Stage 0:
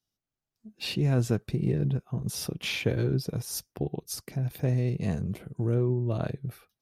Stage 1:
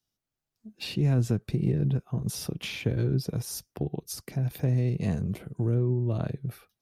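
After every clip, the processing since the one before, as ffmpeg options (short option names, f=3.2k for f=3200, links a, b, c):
-filter_complex "[0:a]acrossover=split=300[a][b];[b]acompressor=threshold=-35dB:ratio=6[c];[a][c]amix=inputs=2:normalize=0,volume=1.5dB"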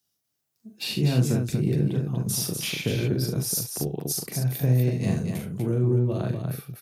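-af "highpass=110,highshelf=f=6.2k:g=10,aecho=1:1:40|70|243:0.596|0.335|0.562,volume=1.5dB"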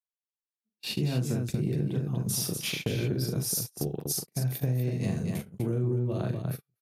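-af "agate=range=-40dB:threshold=-30dB:ratio=16:detection=peak,acompressor=threshold=-23dB:ratio=6,volume=-1.5dB"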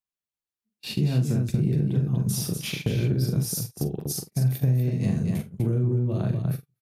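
-filter_complex "[0:a]bass=f=250:g=7,treble=f=4k:g=-1,asplit=2[a][b];[b]adelay=45,volume=-13.5dB[c];[a][c]amix=inputs=2:normalize=0"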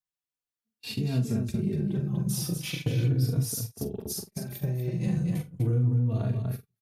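-filter_complex "[0:a]asplit=2[a][b];[b]adelay=3.5,afreqshift=-0.38[c];[a][c]amix=inputs=2:normalize=1"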